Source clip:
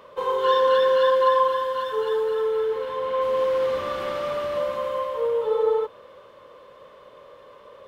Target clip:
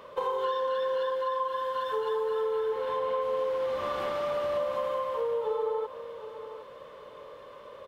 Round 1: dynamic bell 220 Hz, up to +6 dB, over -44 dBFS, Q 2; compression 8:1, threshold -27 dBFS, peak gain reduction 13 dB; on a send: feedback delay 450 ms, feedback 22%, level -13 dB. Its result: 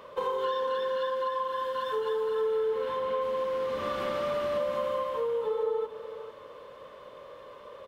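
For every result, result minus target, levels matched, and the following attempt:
echo 312 ms early; 250 Hz band +4.5 dB
dynamic bell 220 Hz, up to +6 dB, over -44 dBFS, Q 2; compression 8:1, threshold -27 dBFS, peak gain reduction 13 dB; on a send: feedback delay 762 ms, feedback 22%, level -13 dB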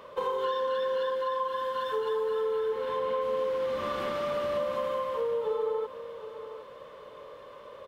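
250 Hz band +4.5 dB
dynamic bell 770 Hz, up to +6 dB, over -44 dBFS, Q 2; compression 8:1, threshold -27 dBFS, peak gain reduction 14.5 dB; on a send: feedback delay 762 ms, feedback 22%, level -13 dB

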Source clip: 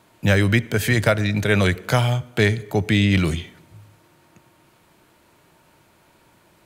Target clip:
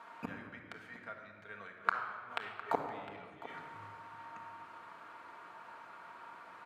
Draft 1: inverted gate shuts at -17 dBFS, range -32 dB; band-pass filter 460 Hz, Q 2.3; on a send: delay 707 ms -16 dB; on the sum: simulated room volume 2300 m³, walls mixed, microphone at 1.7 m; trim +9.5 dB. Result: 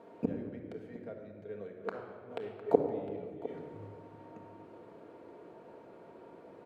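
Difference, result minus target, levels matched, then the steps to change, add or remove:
1 kHz band -11.5 dB
change: band-pass filter 1.2 kHz, Q 2.3

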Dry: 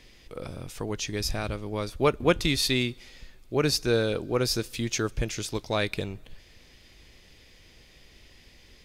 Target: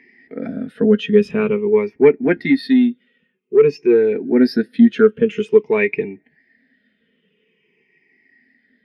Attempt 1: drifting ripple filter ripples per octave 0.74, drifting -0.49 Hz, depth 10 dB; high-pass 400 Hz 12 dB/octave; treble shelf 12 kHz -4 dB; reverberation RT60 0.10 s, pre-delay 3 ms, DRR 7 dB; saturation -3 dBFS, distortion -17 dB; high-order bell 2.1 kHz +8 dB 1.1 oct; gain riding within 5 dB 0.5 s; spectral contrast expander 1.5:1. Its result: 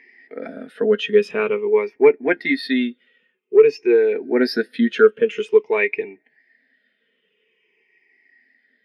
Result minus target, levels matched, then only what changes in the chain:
250 Hz band -5.5 dB
change: high-pass 180 Hz 12 dB/octave

